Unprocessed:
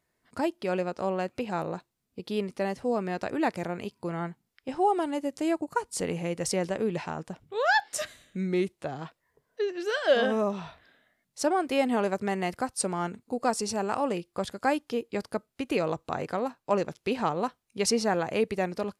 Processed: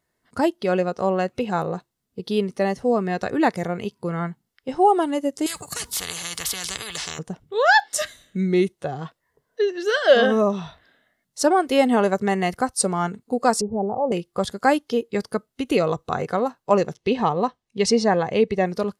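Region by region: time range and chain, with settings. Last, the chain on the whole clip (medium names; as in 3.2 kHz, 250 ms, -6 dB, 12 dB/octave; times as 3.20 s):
5.46–7.19 s: high-pass 54 Hz + spectrum-flattening compressor 10:1
13.61–14.12 s: steep low-pass 840 Hz + peaking EQ 310 Hz -7.5 dB 0.34 oct
16.96–18.66 s: distance through air 75 m + band-stop 1.4 kHz, Q 5.9
whole clip: spectral noise reduction 6 dB; band-stop 2.4 kHz, Q 9.7; trim +8 dB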